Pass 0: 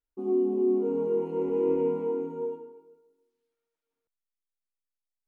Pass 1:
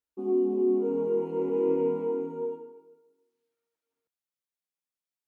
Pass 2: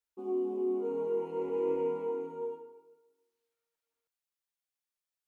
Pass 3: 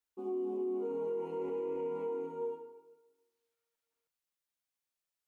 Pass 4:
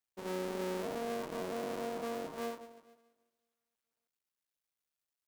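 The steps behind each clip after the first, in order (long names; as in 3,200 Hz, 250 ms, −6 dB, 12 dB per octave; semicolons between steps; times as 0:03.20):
high-pass filter 90 Hz
parametric band 220 Hz −11.5 dB 1.8 octaves
brickwall limiter −30 dBFS, peak gain reduction 7.5 dB
sub-harmonics by changed cycles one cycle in 2, muted; level +1 dB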